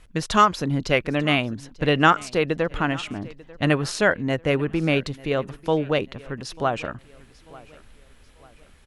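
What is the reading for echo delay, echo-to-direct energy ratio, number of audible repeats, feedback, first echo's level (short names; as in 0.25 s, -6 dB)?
0.892 s, -21.0 dB, 2, 40%, -21.5 dB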